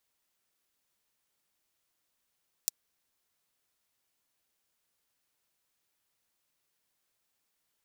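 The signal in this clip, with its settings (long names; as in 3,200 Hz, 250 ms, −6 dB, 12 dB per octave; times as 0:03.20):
closed synth hi-hat, high-pass 5,300 Hz, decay 0.02 s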